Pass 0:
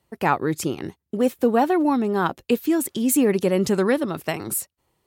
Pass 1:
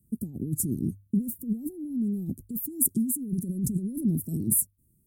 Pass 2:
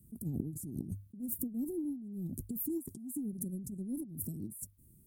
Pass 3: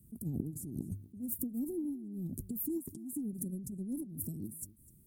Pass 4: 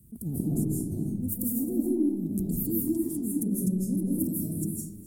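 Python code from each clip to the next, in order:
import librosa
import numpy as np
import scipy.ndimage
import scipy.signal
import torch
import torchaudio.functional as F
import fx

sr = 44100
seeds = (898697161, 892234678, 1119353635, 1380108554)

y1 = fx.over_compress(x, sr, threshold_db=-27.0, ratio=-1.0)
y1 = scipy.signal.sosfilt(scipy.signal.ellip(3, 1.0, 70, [240.0, 9500.0], 'bandstop', fs=sr, output='sos'), y1)
y1 = fx.hum_notches(y1, sr, base_hz=50, count=2)
y1 = y1 * 10.0 ** (2.5 / 20.0)
y2 = fx.over_compress(y1, sr, threshold_db=-38.0, ratio=-1.0)
y2 = y2 * 10.0 ** (-2.5 / 20.0)
y3 = y2 + 10.0 ** (-19.5 / 20.0) * np.pad(y2, (int(252 * sr / 1000.0), 0))[:len(y2)]
y4 = fx.rev_freeverb(y3, sr, rt60_s=1.1, hf_ratio=0.55, predelay_ms=120, drr_db=-6.0)
y4 = y4 * 10.0 ** (4.5 / 20.0)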